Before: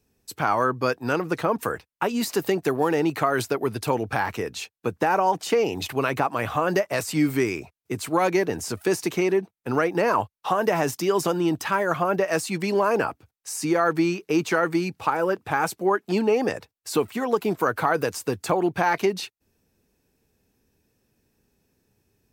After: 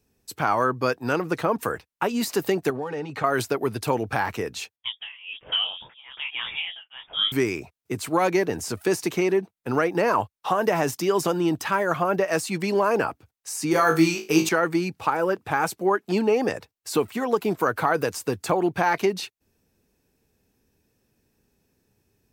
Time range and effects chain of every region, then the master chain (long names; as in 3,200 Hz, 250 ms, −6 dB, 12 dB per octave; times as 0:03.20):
0:02.70–0:03.24: high-frequency loss of the air 66 metres + downward compressor 4 to 1, threshold −25 dBFS + notch comb filter 340 Hz
0:04.76–0:07.32: amplitude tremolo 1.2 Hz, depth 93% + voice inversion scrambler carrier 3,500 Hz + micro pitch shift up and down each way 55 cents
0:13.71–0:14.49: high-shelf EQ 4,100 Hz +11.5 dB + flutter between parallel walls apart 3.2 metres, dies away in 0.27 s
whole clip: no processing